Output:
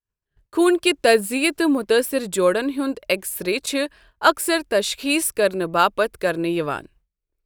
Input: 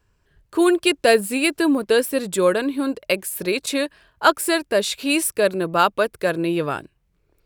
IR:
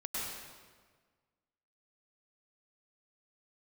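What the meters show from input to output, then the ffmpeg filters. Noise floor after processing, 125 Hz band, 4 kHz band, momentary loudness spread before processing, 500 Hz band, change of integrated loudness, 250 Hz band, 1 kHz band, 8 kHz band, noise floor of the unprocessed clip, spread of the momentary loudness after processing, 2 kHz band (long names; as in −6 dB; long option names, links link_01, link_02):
−84 dBFS, −2.0 dB, 0.0 dB, 7 LU, 0.0 dB, 0.0 dB, −0.5 dB, 0.0 dB, 0.0 dB, −67 dBFS, 7 LU, 0.0 dB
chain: -af "agate=range=-33dB:threshold=-49dB:ratio=3:detection=peak,asubboost=boost=3.5:cutoff=56"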